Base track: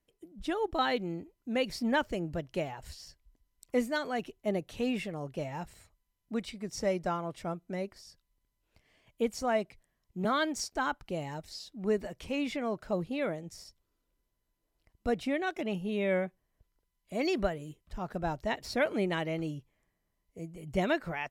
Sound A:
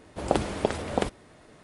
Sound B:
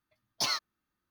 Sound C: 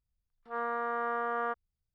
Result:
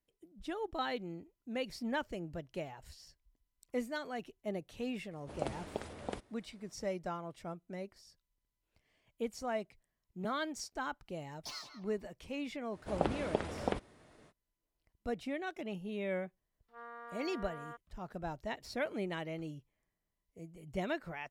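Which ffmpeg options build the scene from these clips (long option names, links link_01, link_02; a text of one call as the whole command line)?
ffmpeg -i bed.wav -i cue0.wav -i cue1.wav -i cue2.wav -filter_complex "[1:a]asplit=2[link_01][link_02];[0:a]volume=-7.5dB[link_03];[2:a]asplit=2[link_04][link_05];[link_05]adelay=166,lowpass=frequency=1900:poles=1,volume=-5.5dB,asplit=2[link_06][link_07];[link_07]adelay=166,lowpass=frequency=1900:poles=1,volume=0.39,asplit=2[link_08][link_09];[link_09]adelay=166,lowpass=frequency=1900:poles=1,volume=0.39,asplit=2[link_10][link_11];[link_11]adelay=166,lowpass=frequency=1900:poles=1,volume=0.39,asplit=2[link_12][link_13];[link_13]adelay=166,lowpass=frequency=1900:poles=1,volume=0.39[link_14];[link_04][link_06][link_08][link_10][link_12][link_14]amix=inputs=6:normalize=0[link_15];[link_02]acrossover=split=3700[link_16][link_17];[link_17]acompressor=threshold=-48dB:ratio=4:attack=1:release=60[link_18];[link_16][link_18]amix=inputs=2:normalize=0[link_19];[3:a]highshelf=frequency=2200:gain=9[link_20];[link_01]atrim=end=1.63,asetpts=PTS-STARTPTS,volume=-14.5dB,afade=type=in:duration=0.004:curve=hsin,afade=type=out:start_time=1.626:duration=0.004:curve=hsin,adelay=5110[link_21];[link_15]atrim=end=1.1,asetpts=PTS-STARTPTS,volume=-15.5dB,afade=type=in:duration=0.004:curve=hsin,afade=type=out:start_time=1.096:duration=0.004:curve=hsin,adelay=11050[link_22];[link_19]atrim=end=1.63,asetpts=PTS-STARTPTS,volume=-8dB,afade=type=in:duration=0.05,afade=type=out:start_time=1.58:duration=0.05,adelay=12700[link_23];[link_20]atrim=end=1.94,asetpts=PTS-STARTPTS,volume=-17dB,afade=type=in:duration=0.004:curve=hsin,afade=type=out:start_time=1.936:duration=0.004:curve=hsin,adelay=16230[link_24];[link_03][link_21][link_22][link_23][link_24]amix=inputs=5:normalize=0" out.wav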